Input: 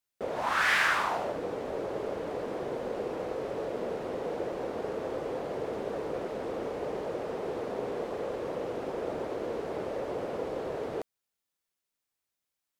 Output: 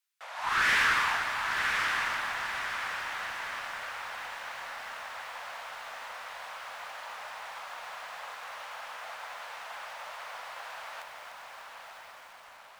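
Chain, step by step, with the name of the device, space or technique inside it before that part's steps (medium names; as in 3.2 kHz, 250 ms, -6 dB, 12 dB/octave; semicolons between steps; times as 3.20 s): Bessel high-pass 1.5 kHz, order 8; tube preamp driven hard (valve stage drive 26 dB, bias 0.25; treble shelf 3.8 kHz -6 dB); echo that smears into a reverb 1030 ms, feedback 54%, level -4 dB; bit-crushed delay 298 ms, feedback 55%, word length 10-bit, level -7 dB; trim +7.5 dB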